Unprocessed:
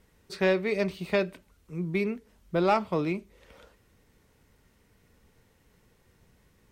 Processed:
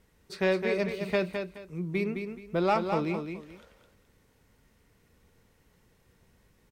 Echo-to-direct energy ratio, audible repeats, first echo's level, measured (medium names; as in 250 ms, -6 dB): -6.0 dB, 2, -6.5 dB